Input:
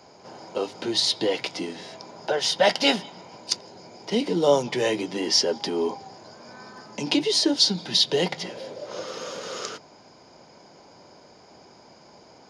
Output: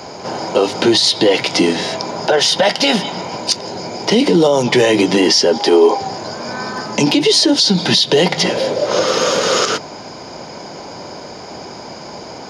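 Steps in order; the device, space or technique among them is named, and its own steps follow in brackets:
loud club master (downward compressor 3 to 1, threshold −25 dBFS, peak gain reduction 9.5 dB; hard clipping −12.5 dBFS, distortion −38 dB; boost into a limiter +22 dB)
0:05.58–0:06.01: low shelf with overshoot 270 Hz −10.5 dB, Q 1.5
level −2.5 dB

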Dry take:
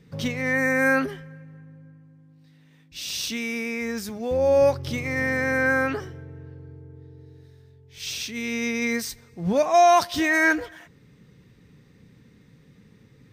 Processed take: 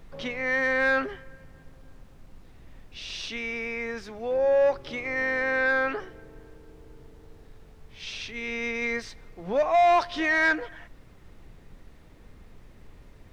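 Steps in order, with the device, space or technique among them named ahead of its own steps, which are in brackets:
aircraft cabin announcement (band-pass filter 390–3,100 Hz; soft clipping −15 dBFS, distortion −16 dB; brown noise bed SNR 18 dB)

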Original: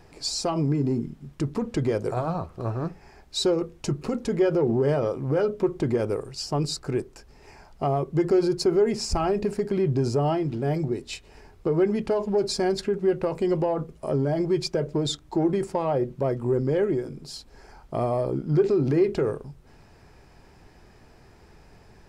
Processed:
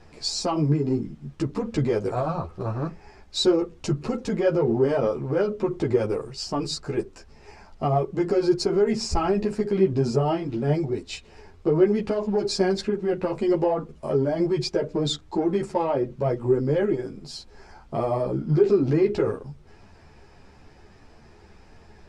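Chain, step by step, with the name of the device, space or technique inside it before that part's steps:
string-machine ensemble chorus (string-ensemble chorus; low-pass filter 7,800 Hz 12 dB per octave)
level +4.5 dB

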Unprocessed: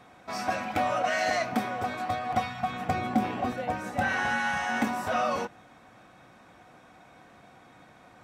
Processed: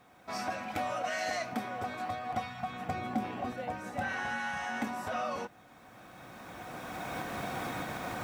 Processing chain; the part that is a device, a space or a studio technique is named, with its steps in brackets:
0:00.68–0:01.54: high-shelf EQ 4,800 Hz +6 dB
cheap recorder with automatic gain (white noise bed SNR 40 dB; camcorder AGC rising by 13 dB per second)
level −7.5 dB

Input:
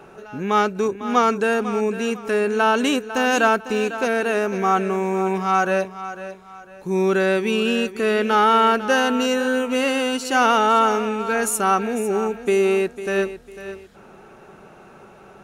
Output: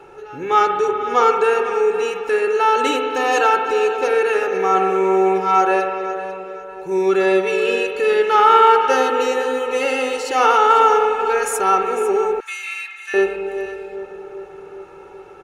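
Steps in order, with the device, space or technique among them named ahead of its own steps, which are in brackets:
low-shelf EQ 230 Hz −4.5 dB
high-shelf EQ 9,300 Hz −8.5 dB
comb filter 2.3 ms, depth 98%
dub delay into a spring reverb (feedback echo with a low-pass in the loop 396 ms, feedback 71%, low-pass 1,200 Hz, level −12.5 dB; spring reverb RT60 1.8 s, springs 42/46 ms, chirp 75 ms, DRR 4 dB)
0:12.40–0:13.14: high-pass filter 1,500 Hz 24 dB per octave
level −1.5 dB

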